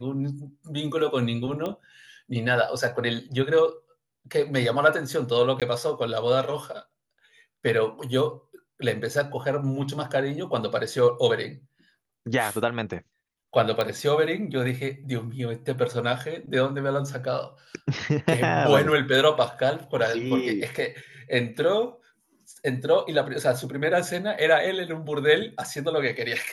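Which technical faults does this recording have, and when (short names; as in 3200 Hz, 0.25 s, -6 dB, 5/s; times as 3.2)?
1.66 pop -18 dBFS
5.6–5.62 gap 17 ms
13.81 pop -13 dBFS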